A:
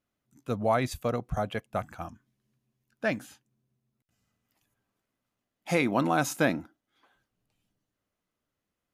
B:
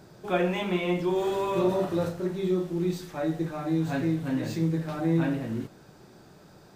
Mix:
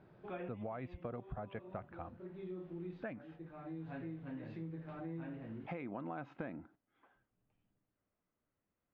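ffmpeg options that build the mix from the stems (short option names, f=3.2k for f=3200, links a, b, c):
-filter_complex "[0:a]lowpass=f=1.7k:p=1,acompressor=threshold=-27dB:ratio=6,volume=-2dB,asplit=2[a][b];[1:a]volume=-11dB[c];[b]apad=whole_len=297802[d];[c][d]sidechaincompress=threshold=-46dB:ratio=4:attack=10:release=633[e];[a][e]amix=inputs=2:normalize=0,lowpass=f=2.9k:w=0.5412,lowpass=f=2.9k:w=1.3066,acompressor=threshold=-45dB:ratio=2.5"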